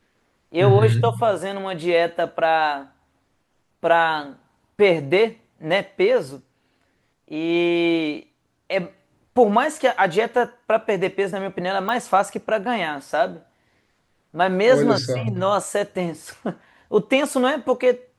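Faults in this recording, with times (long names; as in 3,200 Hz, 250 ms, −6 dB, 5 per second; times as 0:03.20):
0:11.89: click −13 dBFS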